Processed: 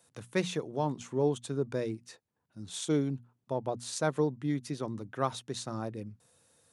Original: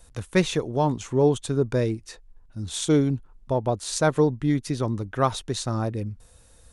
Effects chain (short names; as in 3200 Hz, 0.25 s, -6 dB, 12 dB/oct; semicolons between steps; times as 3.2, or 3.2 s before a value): HPF 120 Hz 24 dB/oct; notches 60/120/180/240 Hz; gain -8.5 dB